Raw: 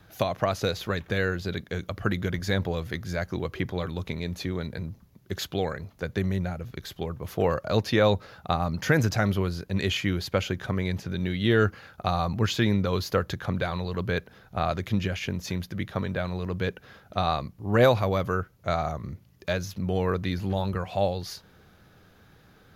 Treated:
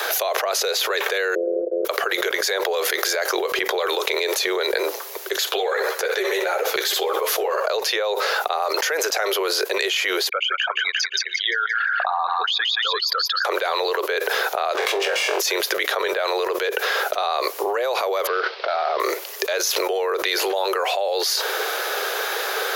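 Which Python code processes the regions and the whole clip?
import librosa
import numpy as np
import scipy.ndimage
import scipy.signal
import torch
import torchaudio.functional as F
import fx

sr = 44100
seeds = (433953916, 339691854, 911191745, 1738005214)

y = fx.chain(x, sr, fx.sample_sort(block=256),
    fx.steep_lowpass(hz=610.0, slope=96),
    fx.low_shelf_res(hz=240.0, db=-7.0, q=3.0), at=(1.35, 1.85))
y = fx.chain(y, sr, fx.echo_feedback(ms=62, feedback_pct=43, wet_db=-14),
    fx.ensemble(), at=(5.49, 7.66))
y = fx.chain(y, sr, fx.envelope_sharpen(power=3.0),
    fx.highpass(hz=1100.0, slope=24),
    fx.echo_wet_highpass(ms=174, feedback_pct=32, hz=1700.0, wet_db=-6.0), at=(10.29, 13.45))
y = fx.chain(y, sr, fx.lower_of_two(delay_ms=1.8),
    fx.high_shelf(hz=6600.0, db=-8.0),
    fx.room_flutter(wall_m=3.9, rt60_s=0.25), at=(14.74, 15.4))
y = fx.chain(y, sr, fx.cvsd(bps=32000),
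    fx.steep_lowpass(hz=4800.0, slope=48), at=(18.27, 19.0))
y = scipy.signal.sosfilt(scipy.signal.butter(12, 390.0, 'highpass', fs=sr, output='sos'), y)
y = fx.high_shelf(y, sr, hz=4700.0, db=5.0)
y = fx.env_flatten(y, sr, amount_pct=100)
y = F.gain(torch.from_numpy(y), -5.5).numpy()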